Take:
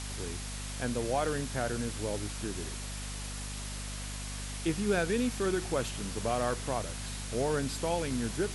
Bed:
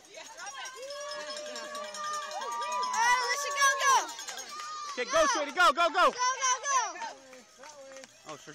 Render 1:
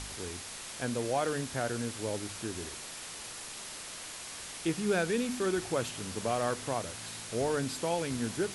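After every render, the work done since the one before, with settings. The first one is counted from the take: de-hum 50 Hz, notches 5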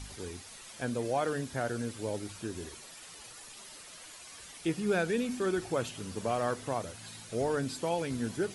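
noise reduction 10 dB, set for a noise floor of -44 dBFS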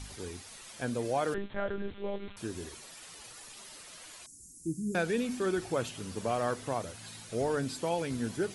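1.34–2.37 s: monotone LPC vocoder at 8 kHz 200 Hz; 4.26–4.95 s: elliptic band-stop 300–6800 Hz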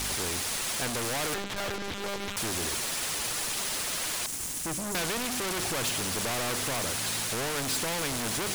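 waveshaping leveller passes 5; spectrum-flattening compressor 2:1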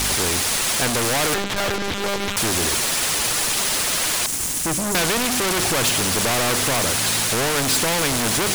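trim +10.5 dB

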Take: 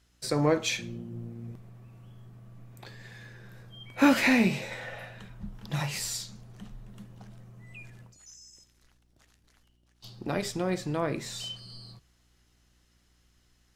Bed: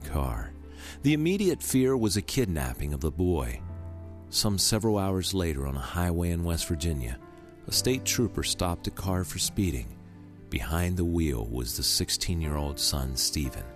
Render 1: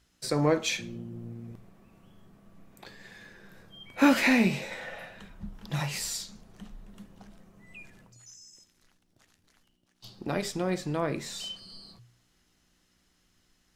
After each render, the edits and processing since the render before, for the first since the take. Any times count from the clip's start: de-hum 60 Hz, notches 2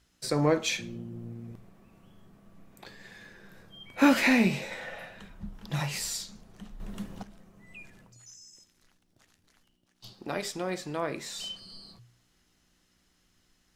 6.80–7.23 s: gain +10 dB; 10.13–11.39 s: bass shelf 240 Hz -11 dB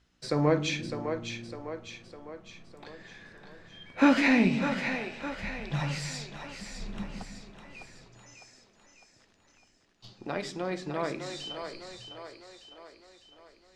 distance through air 93 m; two-band feedback delay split 320 Hz, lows 156 ms, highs 605 ms, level -7 dB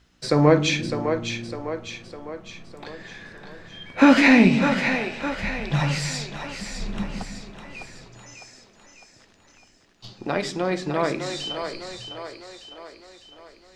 trim +8.5 dB; peak limiter -3 dBFS, peak gain reduction 3 dB

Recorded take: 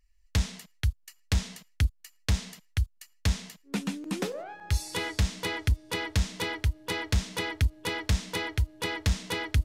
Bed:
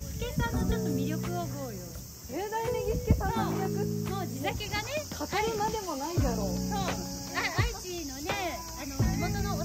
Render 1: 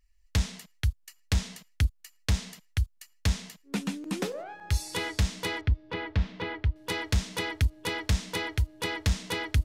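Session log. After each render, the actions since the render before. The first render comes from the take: 5.61–6.76 s: distance through air 320 m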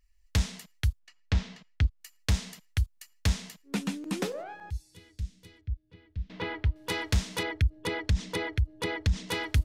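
0.99–2.01 s: distance through air 160 m; 4.70–6.30 s: amplifier tone stack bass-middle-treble 10-0-1; 7.43–9.29 s: resonances exaggerated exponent 1.5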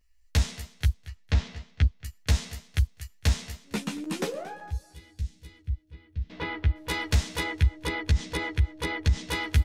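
doubling 13 ms -2.5 dB; feedback delay 228 ms, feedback 28%, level -17.5 dB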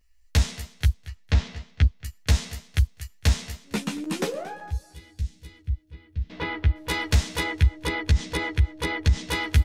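trim +3 dB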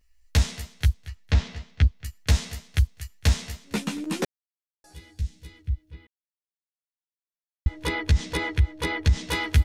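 4.25–4.84 s: mute; 6.07–7.66 s: mute

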